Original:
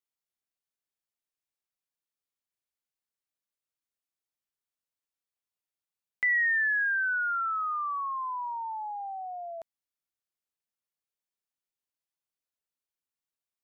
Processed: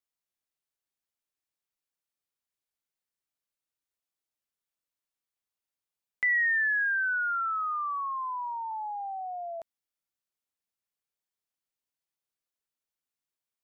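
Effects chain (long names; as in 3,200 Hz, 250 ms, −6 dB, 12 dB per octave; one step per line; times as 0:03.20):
0:08.71–0:09.60: spectral tilt −3.5 dB per octave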